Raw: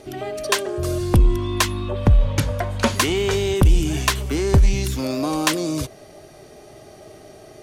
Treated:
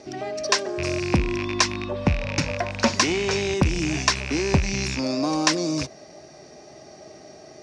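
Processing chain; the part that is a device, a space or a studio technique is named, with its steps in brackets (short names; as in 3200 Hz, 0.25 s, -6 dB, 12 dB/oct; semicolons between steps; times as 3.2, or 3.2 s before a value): car door speaker with a rattle (rattling part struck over -23 dBFS, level -16 dBFS; speaker cabinet 100–6700 Hz, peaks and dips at 110 Hz -9 dB, 420 Hz -5 dB, 1300 Hz -4 dB, 3200 Hz -7 dB, 5400 Hz +8 dB)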